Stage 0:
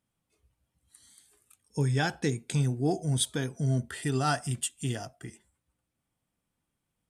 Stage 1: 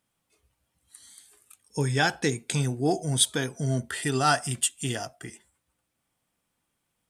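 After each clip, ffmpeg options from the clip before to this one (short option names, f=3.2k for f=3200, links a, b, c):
-af "lowshelf=f=310:g=-9,volume=7dB"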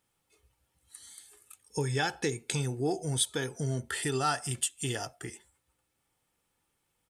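-af "aecho=1:1:2.3:0.37,acompressor=threshold=-31dB:ratio=2"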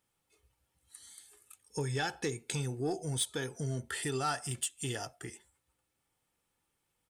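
-af "asoftclip=type=tanh:threshold=-19.5dB,volume=-3dB"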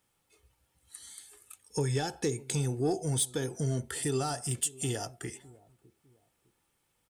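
-filter_complex "[0:a]acrossover=split=780|4600[a][b][c];[a]aecho=1:1:605|1210:0.0891|0.0267[d];[b]acompressor=threshold=-48dB:ratio=6[e];[d][e][c]amix=inputs=3:normalize=0,volume=5dB"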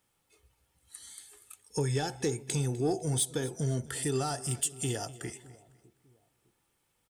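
-af "aecho=1:1:252|504|756:0.112|0.0348|0.0108"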